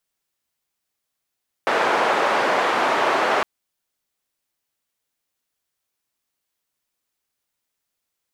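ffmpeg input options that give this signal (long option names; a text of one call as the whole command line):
ffmpeg -f lavfi -i "anoisesrc=color=white:duration=1.76:sample_rate=44100:seed=1,highpass=frequency=470,lowpass=frequency=1100,volume=0.1dB" out.wav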